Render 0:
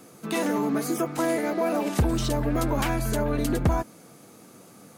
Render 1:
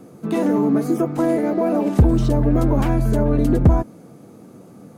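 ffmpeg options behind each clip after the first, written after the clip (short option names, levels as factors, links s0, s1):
-af "tiltshelf=f=970:g=8.5,volume=1.19"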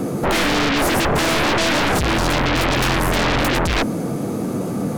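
-af "aeval=exprs='(tanh(11.2*val(0)+0.2)-tanh(0.2))/11.2':c=same,aeval=exprs='0.112*sin(PI/2*3.98*val(0)/0.112)':c=same,volume=1.78"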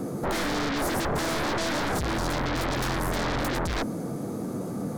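-af "equalizer=f=2700:t=o:w=0.64:g=-7,volume=0.355"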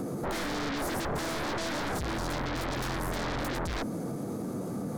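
-af "alimiter=level_in=2.37:limit=0.0631:level=0:latency=1:release=235,volume=0.422,volume=1.58"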